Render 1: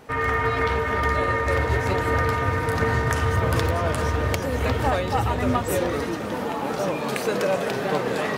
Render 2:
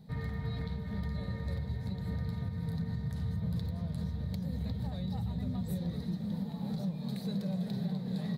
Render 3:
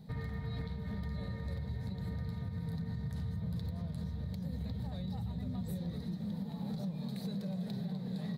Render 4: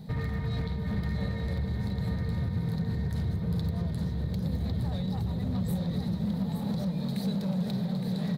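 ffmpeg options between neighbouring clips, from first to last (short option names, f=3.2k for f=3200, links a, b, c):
-af "firequalizer=gain_entry='entry(110,0);entry(180,13);entry(290,-17);entry(750,-18);entry(1300,-29);entry(1900,-21);entry(2800,-28);entry(3900,-4);entry(5700,-22);entry(13000,-13)':delay=0.05:min_phase=1,alimiter=limit=-23dB:level=0:latency=1:release=410,lowshelf=f=330:g=-5"
-af "alimiter=level_in=8.5dB:limit=-24dB:level=0:latency=1:release=174,volume=-8.5dB,volume=1.5dB"
-af "volume=34.5dB,asoftclip=hard,volume=-34.5dB,aecho=1:1:865:0.422,volume=8.5dB"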